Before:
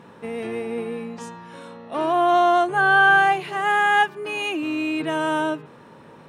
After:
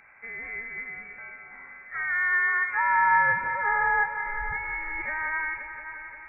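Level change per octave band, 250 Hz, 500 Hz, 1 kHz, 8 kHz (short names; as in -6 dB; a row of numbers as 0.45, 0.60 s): under -25 dB, -20.0 dB, -7.0 dB, under -35 dB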